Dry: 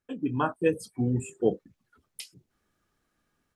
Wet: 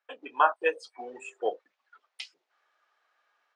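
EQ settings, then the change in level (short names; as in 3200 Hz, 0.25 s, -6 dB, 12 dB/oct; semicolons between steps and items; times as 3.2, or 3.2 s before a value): HPF 650 Hz 24 dB/oct; air absorption 150 m; high shelf 8600 Hz -8.5 dB; +8.5 dB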